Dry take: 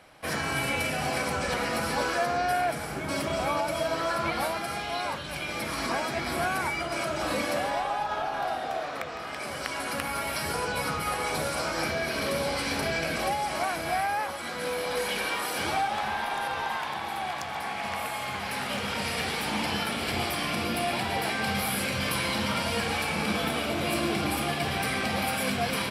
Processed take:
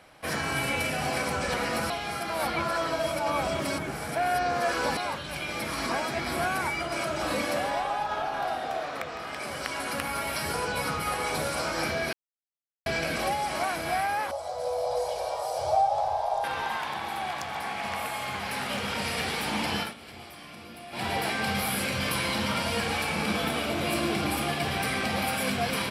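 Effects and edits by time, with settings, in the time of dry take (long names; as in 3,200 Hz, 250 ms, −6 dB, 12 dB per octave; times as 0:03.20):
0:01.90–0:04.97: reverse
0:12.13–0:12.86: silence
0:14.31–0:16.44: drawn EQ curve 130 Hz 0 dB, 200 Hz −26 dB, 290 Hz −23 dB, 430 Hz −5 dB, 630 Hz +12 dB, 1,600 Hz −18 dB, 2,800 Hz −16 dB, 5,100 Hz −3 dB, 7,600 Hz −5 dB, 15,000 Hz −14 dB
0:19.80–0:21.05: duck −15.5 dB, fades 0.14 s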